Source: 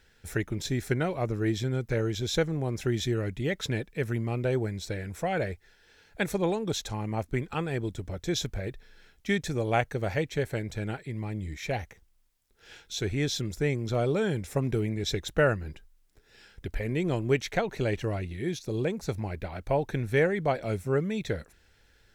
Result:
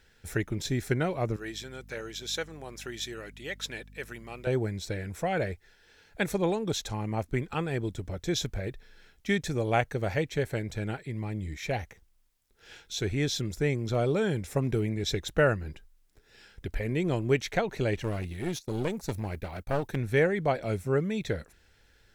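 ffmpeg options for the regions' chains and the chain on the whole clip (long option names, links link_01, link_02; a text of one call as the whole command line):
ffmpeg -i in.wav -filter_complex "[0:a]asettb=1/sr,asplit=3[link_01][link_02][link_03];[link_01]atrim=end=1.364[link_04];[link_02]atrim=start=1.36:end=4.47,asetpts=PTS-STARTPTS,afade=type=in:duration=0.004:curve=qsin,afade=type=out:start_time=3.106:duration=0.004:curve=qsin,highpass=frequency=1300:poles=1,bandreject=frequency=2100:width=21,aeval=exprs='val(0)+0.00316*(sin(2*PI*50*n/s)+sin(2*PI*2*50*n/s)/2+sin(2*PI*3*50*n/s)/3+sin(2*PI*4*50*n/s)/4+sin(2*PI*5*50*n/s)/5)':channel_layout=same[link_05];[link_03]atrim=start=4.466[link_06];[link_04][link_05]acrossfade=duration=0.004:curve1=hsin:curve2=qsin[link_07];[link_07][link_06]acrossfade=duration=0.004:curve1=qsin:curve2=hsin,asettb=1/sr,asplit=3[link_08][link_09][link_10];[link_08]atrim=end=18.044[link_11];[link_09]atrim=start=18.04:end=19.96,asetpts=PTS-STARTPTS,afade=type=in:duration=0.004:curve=qsin,afade=type=out:start_time=1.916:duration=0.004:curve=qsin,agate=range=-33dB:threshold=-39dB:ratio=3:release=100:detection=peak,highshelf=frequency=8600:gain=11,aeval=exprs='clip(val(0),-1,0.02)':channel_layout=same[link_12];[link_10]atrim=start=19.956[link_13];[link_11][link_12]acrossfade=duration=0.004:curve1=hsin:curve2=qsin[link_14];[link_14][link_13]acrossfade=duration=0.004:curve1=qsin:curve2=hsin" out.wav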